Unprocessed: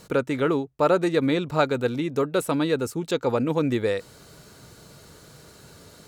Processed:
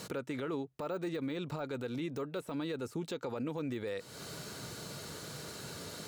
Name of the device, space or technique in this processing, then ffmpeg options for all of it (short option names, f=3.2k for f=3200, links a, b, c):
broadcast voice chain: -af "highpass=100,deesser=0.95,acompressor=threshold=-37dB:ratio=4,equalizer=f=3.7k:t=o:w=2.1:g=2.5,alimiter=level_in=8.5dB:limit=-24dB:level=0:latency=1:release=43,volume=-8.5dB,volume=3.5dB"